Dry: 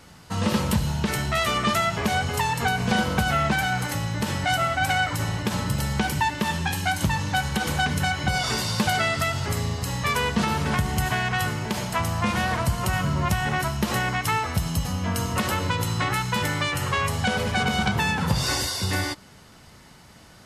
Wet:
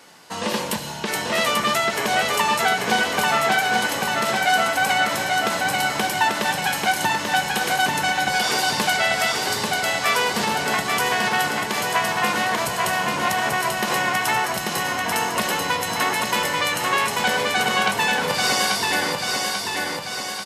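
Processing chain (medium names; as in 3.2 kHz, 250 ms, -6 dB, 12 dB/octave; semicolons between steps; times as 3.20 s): high-pass 350 Hz 12 dB/octave; band-stop 1.3 kHz, Q 15; on a send: feedback delay 839 ms, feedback 57%, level -3 dB; on the sum: trim +3.5 dB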